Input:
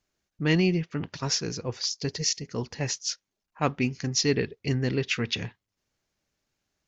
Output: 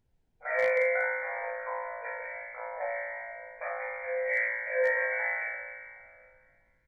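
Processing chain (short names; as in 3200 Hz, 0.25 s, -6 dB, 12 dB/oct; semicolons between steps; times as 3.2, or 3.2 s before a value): spectral limiter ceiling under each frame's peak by 17 dB; power-law curve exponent 1.4; limiter -19 dBFS, peak gain reduction 12 dB; Schroeder reverb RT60 2.4 s, combs from 27 ms, DRR 7.5 dB; phaser 0.72 Hz, delay 2.2 ms, feedback 72%; doubler 45 ms -3 dB; on a send: flutter echo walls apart 3 m, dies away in 1.4 s; on the sum: FFT band-pass 470–2400 Hz; added noise brown -67 dBFS; bell 1200 Hz -13.5 dB 0.23 oct; hard clip -15.5 dBFS, distortion -33 dB; gain -3 dB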